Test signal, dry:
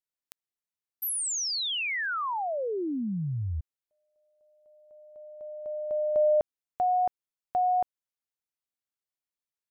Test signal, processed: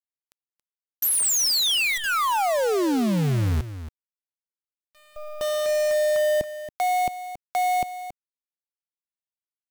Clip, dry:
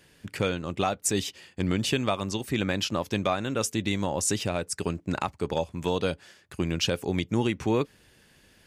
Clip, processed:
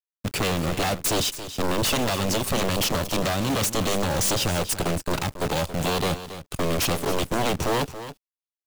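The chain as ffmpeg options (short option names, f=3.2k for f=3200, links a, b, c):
-filter_complex "[0:a]agate=range=-25dB:threshold=-51dB:ratio=16:release=77:detection=peak,equalizer=f=1.8k:w=2.6:g=-15,asplit=2[a][b];[b]alimiter=limit=-19.5dB:level=0:latency=1:release=352,volume=1dB[c];[a][c]amix=inputs=2:normalize=0,acrossover=split=270|2100[d][e][f];[e]acompressor=threshold=-26dB:ratio=3:attack=0.39:release=45:knee=2.83:detection=peak[g];[d][g][f]amix=inputs=3:normalize=0,aeval=exprs='0.355*(cos(1*acos(clip(val(0)/0.355,-1,1)))-cos(1*PI/2))+0.0708*(cos(3*acos(clip(val(0)/0.355,-1,1)))-cos(3*PI/2))+0.02*(cos(6*acos(clip(val(0)/0.355,-1,1)))-cos(6*PI/2))+0.112*(cos(7*acos(clip(val(0)/0.355,-1,1)))-cos(7*PI/2))':c=same,asoftclip=type=tanh:threshold=-22dB,acrusher=bits=6:dc=4:mix=0:aa=0.000001,aecho=1:1:277:0.237,volume=3dB"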